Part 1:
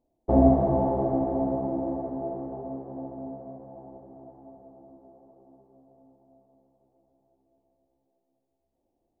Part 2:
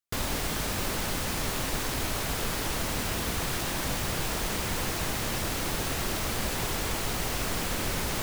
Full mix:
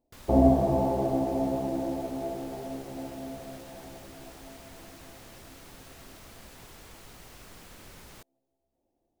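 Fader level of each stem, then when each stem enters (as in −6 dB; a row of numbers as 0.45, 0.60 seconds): −1.5, −19.0 decibels; 0.00, 0.00 seconds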